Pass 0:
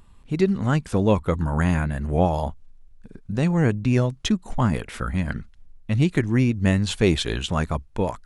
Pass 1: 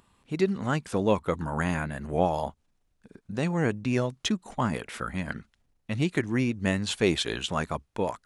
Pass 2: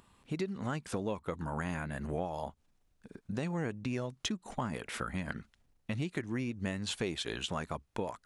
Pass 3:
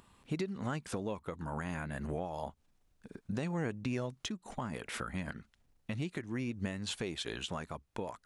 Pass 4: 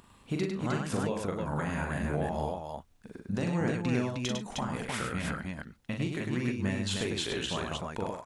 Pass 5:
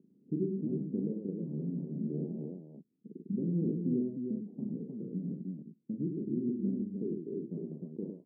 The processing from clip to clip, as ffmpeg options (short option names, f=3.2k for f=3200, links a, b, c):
-af "highpass=f=280:p=1,volume=-2dB"
-af "acompressor=threshold=-33dB:ratio=5"
-af "alimiter=level_in=2.5dB:limit=-24dB:level=0:latency=1:release=480,volume=-2.5dB,volume=1dB"
-af "aecho=1:1:41|102|141|309:0.596|0.562|0.133|0.708,volume=3dB"
-af "asuperpass=centerf=250:order=8:qfactor=0.99"